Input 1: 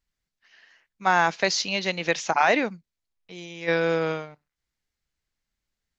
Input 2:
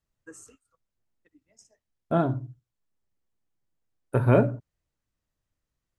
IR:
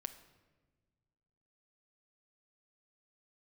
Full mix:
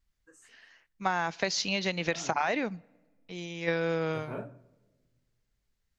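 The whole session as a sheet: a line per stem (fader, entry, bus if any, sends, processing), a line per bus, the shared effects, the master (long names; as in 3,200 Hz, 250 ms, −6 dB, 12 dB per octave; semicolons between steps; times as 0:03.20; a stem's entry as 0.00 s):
−2.0 dB, 0.00 s, send −18 dB, low-shelf EQ 150 Hz +9 dB
−3.5 dB, 0.00 s, send −12.5 dB, low-shelf EQ 450 Hz −7.5 dB; micro pitch shift up and down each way 58 cents; automatic ducking −12 dB, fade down 0.85 s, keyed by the first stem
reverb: on, RT60 1.4 s, pre-delay 6 ms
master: downward compressor 5 to 1, threshold −25 dBFS, peak gain reduction 9.5 dB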